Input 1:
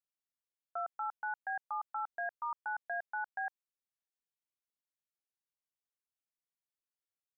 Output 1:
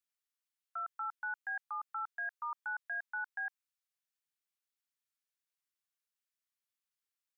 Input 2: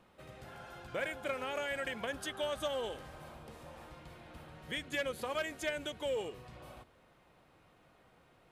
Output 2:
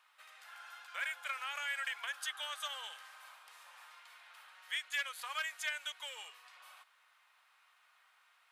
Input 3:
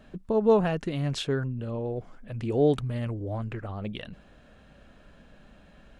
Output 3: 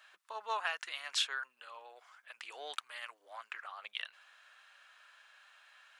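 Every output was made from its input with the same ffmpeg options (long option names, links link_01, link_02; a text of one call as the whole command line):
ffmpeg -i in.wav -af "highpass=frequency=1100:width=0.5412,highpass=frequency=1100:width=1.3066,volume=2dB" out.wav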